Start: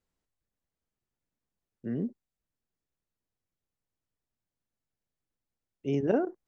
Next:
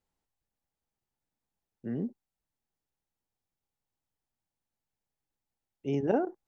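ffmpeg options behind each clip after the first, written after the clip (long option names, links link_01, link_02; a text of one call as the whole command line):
ffmpeg -i in.wav -af "equalizer=frequency=830:width_type=o:width=0.29:gain=9,volume=-1.5dB" out.wav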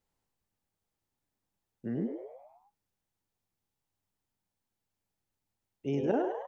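ffmpeg -i in.wav -filter_complex "[0:a]asplit=2[link_01][link_02];[link_02]acompressor=threshold=-35dB:ratio=6,volume=-1.5dB[link_03];[link_01][link_03]amix=inputs=2:normalize=0,asplit=7[link_04][link_05][link_06][link_07][link_08][link_09][link_10];[link_05]adelay=103,afreqshift=97,volume=-7dB[link_11];[link_06]adelay=206,afreqshift=194,volume=-12.5dB[link_12];[link_07]adelay=309,afreqshift=291,volume=-18dB[link_13];[link_08]adelay=412,afreqshift=388,volume=-23.5dB[link_14];[link_09]adelay=515,afreqshift=485,volume=-29.1dB[link_15];[link_10]adelay=618,afreqshift=582,volume=-34.6dB[link_16];[link_04][link_11][link_12][link_13][link_14][link_15][link_16]amix=inputs=7:normalize=0,volume=-4dB" out.wav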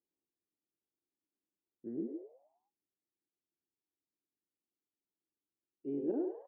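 ffmpeg -i in.wav -af "bandpass=frequency=330:width_type=q:width=4:csg=0" out.wav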